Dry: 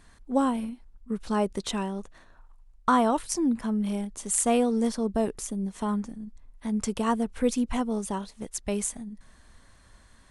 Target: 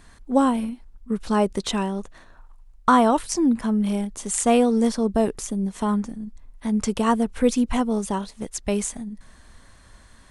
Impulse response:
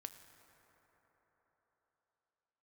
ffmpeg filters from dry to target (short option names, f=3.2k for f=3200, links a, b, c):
-filter_complex "[0:a]acrossover=split=8300[a][b];[b]acompressor=threshold=-44dB:ratio=4:attack=1:release=60[c];[a][c]amix=inputs=2:normalize=0,volume=5.5dB"